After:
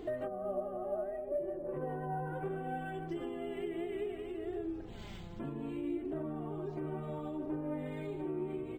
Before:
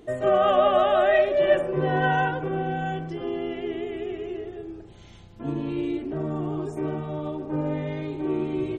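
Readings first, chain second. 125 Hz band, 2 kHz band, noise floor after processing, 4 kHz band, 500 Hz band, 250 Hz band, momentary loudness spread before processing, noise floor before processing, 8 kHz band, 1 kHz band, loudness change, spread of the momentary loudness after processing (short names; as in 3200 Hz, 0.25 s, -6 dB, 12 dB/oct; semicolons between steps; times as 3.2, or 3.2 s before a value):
-12.5 dB, -20.0 dB, -46 dBFS, -19.5 dB, -14.5 dB, -10.0 dB, 13 LU, -47 dBFS, n/a, -17.0 dB, -14.5 dB, 4 LU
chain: treble ducked by the level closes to 500 Hz, closed at -17.5 dBFS; compressor 4:1, threshold -41 dBFS, peak gain reduction 18 dB; flange 0.66 Hz, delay 2.6 ms, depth 3.3 ms, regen +36%; decimation joined by straight lines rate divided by 4×; gain +6.5 dB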